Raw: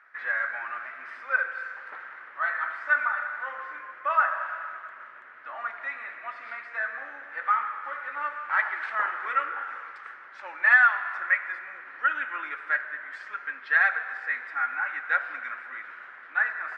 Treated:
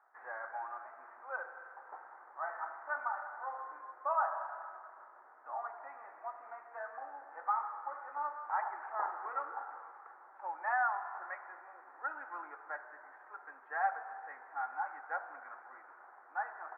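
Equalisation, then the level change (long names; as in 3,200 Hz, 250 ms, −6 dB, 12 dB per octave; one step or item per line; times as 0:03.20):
high-pass filter 320 Hz 24 dB per octave
transistor ladder low-pass 900 Hz, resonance 65%
parametric band 570 Hz −5.5 dB 0.66 octaves
+6.0 dB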